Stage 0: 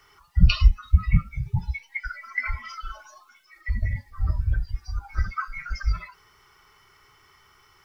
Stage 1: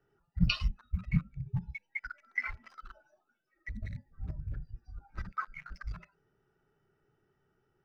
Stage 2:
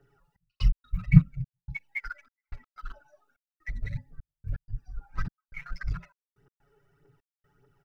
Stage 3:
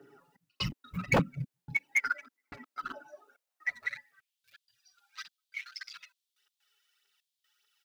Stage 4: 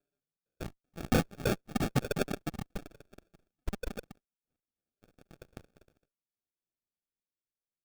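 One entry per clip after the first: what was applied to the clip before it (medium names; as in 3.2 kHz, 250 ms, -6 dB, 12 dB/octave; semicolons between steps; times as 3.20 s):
local Wiener filter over 41 samples; resonant low shelf 110 Hz -9 dB, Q 1.5; trim -5.5 dB
comb 7.1 ms, depth 88%; phaser 1.7 Hz, delay 2.4 ms, feedback 55%; trance gate "xxx..x.xxxxx..xx" 125 bpm -60 dB; trim +2.5 dB
high-pass sweep 270 Hz -> 3.5 kHz, 3.08–4.42 s; wavefolder -25.5 dBFS; trim +7.5 dB
Chebyshev shaper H 3 -12 dB, 4 -19 dB, 5 -27 dB, 7 -23 dB, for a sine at -18 dBFS; ever faster or slower copies 457 ms, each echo +2 st, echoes 3; sample-rate reducer 1 kHz, jitter 0%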